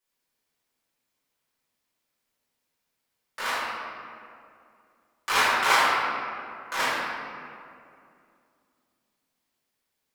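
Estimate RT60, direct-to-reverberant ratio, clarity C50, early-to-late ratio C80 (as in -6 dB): 2.5 s, -11.0 dB, -3.0 dB, -1.0 dB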